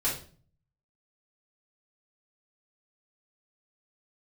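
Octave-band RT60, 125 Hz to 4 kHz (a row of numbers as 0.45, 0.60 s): 0.85, 0.65, 0.50, 0.40, 0.35, 0.35 s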